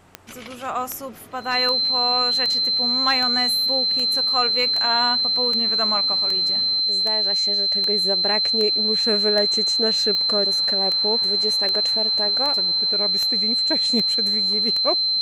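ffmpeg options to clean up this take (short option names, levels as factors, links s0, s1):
-af "adeclick=t=4,bandreject=f=93.4:t=h:w=4,bandreject=f=186.8:t=h:w=4,bandreject=f=280.2:t=h:w=4,bandreject=f=373.6:t=h:w=4,bandreject=f=4100:w=30"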